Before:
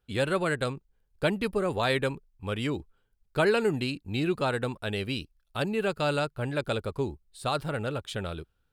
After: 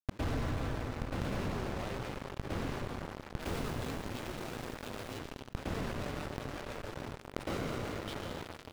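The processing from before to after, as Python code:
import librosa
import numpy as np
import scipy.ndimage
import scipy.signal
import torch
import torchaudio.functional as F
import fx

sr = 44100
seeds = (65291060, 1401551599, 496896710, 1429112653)

y = x + 10.0 ** (-23.5 / 20.0) * np.pad(x, (int(808 * sr / 1000.0), 0))[:len(x)]
y = fx.schmitt(y, sr, flips_db=-40.0)
y = fx.low_shelf(y, sr, hz=360.0, db=-4.0)
y = 10.0 ** (-33.0 / 20.0) * np.tanh(y / 10.0 ** (-33.0 / 20.0))
y = fx.gate_flip(y, sr, shuts_db=-34.0, range_db=-38)
y = fx.rev_plate(y, sr, seeds[0], rt60_s=3.9, hf_ratio=0.7, predelay_ms=100, drr_db=4.0)
y = fx.leveller(y, sr, passes=5)
y = fx.high_shelf(y, sr, hz=7200.0, db=fx.steps((0.0, -12.0), (3.4, -3.5), (5.17, -10.0)))
y = fx.env_flatten(y, sr, amount_pct=50)
y = y * 10.0 ** (7.5 / 20.0)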